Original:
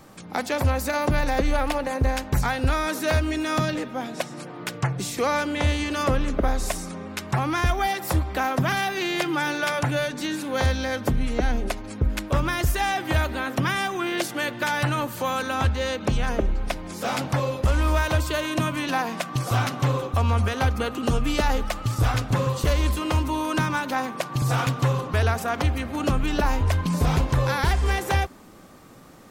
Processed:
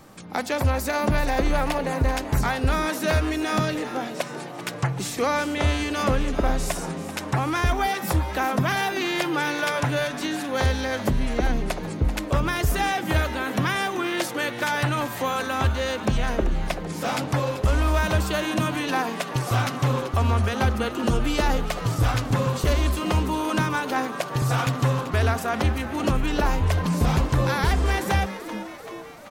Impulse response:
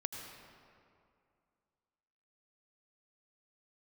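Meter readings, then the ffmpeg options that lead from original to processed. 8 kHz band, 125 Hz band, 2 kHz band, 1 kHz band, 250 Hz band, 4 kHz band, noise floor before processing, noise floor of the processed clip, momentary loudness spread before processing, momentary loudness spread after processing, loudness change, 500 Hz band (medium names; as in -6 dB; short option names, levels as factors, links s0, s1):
+0.5 dB, 0.0 dB, +0.5 dB, +0.5 dB, +1.0 dB, +0.5 dB, -38 dBFS, -35 dBFS, 5 LU, 5 LU, +0.5 dB, +0.5 dB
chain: -filter_complex "[0:a]asplit=7[s0][s1][s2][s3][s4][s5][s6];[s1]adelay=386,afreqshift=130,volume=0.224[s7];[s2]adelay=772,afreqshift=260,volume=0.13[s8];[s3]adelay=1158,afreqshift=390,volume=0.075[s9];[s4]adelay=1544,afreqshift=520,volume=0.0437[s10];[s5]adelay=1930,afreqshift=650,volume=0.0254[s11];[s6]adelay=2316,afreqshift=780,volume=0.0146[s12];[s0][s7][s8][s9][s10][s11][s12]amix=inputs=7:normalize=0"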